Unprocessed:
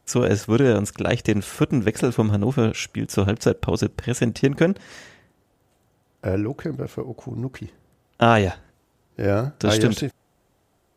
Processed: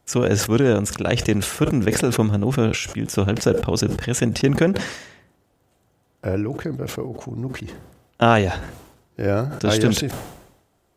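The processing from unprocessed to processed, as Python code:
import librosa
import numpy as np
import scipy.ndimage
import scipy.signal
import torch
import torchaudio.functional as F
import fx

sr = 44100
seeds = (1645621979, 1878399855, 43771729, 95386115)

y = fx.sustainer(x, sr, db_per_s=69.0)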